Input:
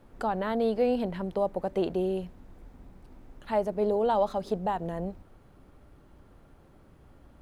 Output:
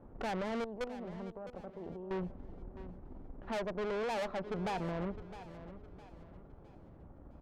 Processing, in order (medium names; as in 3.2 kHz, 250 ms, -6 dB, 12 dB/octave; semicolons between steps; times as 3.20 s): low-pass 1 kHz 12 dB/octave; 0.64–2.11 s: level held to a coarse grid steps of 23 dB; 3.57–4.58 s: bass shelf 480 Hz -6.5 dB; valve stage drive 39 dB, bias 0.7; feedback delay 660 ms, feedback 38%, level -14 dB; trim +5 dB